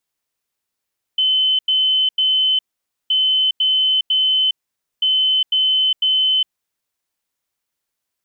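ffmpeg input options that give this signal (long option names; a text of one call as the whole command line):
ffmpeg -f lavfi -i "aevalsrc='0.224*sin(2*PI*3050*t)*clip(min(mod(mod(t,1.92),0.5),0.41-mod(mod(t,1.92),0.5))/0.005,0,1)*lt(mod(t,1.92),1.5)':duration=5.76:sample_rate=44100" out.wav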